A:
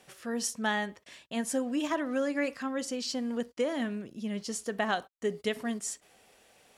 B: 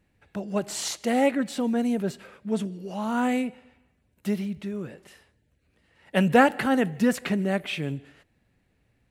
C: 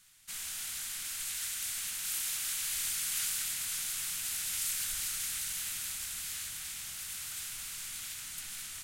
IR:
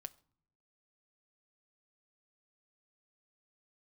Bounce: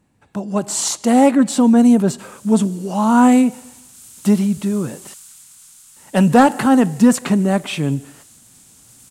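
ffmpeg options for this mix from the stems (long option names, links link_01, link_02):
-filter_complex "[1:a]lowshelf=frequency=410:gain=-5,asoftclip=type=tanh:threshold=-13.5dB,volume=3dB,asplit=3[link_01][link_02][link_03];[link_01]atrim=end=5.14,asetpts=PTS-STARTPTS,afade=type=out:start_time=5.136:duration=0.004:curve=hsin[link_04];[link_02]atrim=start=5.14:end=5.96,asetpts=PTS-STARTPTS,volume=0[link_05];[link_03]atrim=start=5.96,asetpts=PTS-STARTPTS,afade=type=in:duration=0.004:curve=hsin[link_06];[link_04][link_05][link_06]concat=n=3:v=0:a=1[link_07];[2:a]adelay=1900,volume=-18.5dB[link_08];[link_07][link_08]amix=inputs=2:normalize=0,equalizer=frequency=125:width_type=o:width=1:gain=8,equalizer=frequency=250:width_type=o:width=1:gain=9,equalizer=frequency=1000:width_type=o:width=1:gain=9,equalizer=frequency=2000:width_type=o:width=1:gain=-5,equalizer=frequency=8000:width_type=o:width=1:gain=10,dynaudnorm=framelen=460:gausssize=5:maxgain=7.5dB"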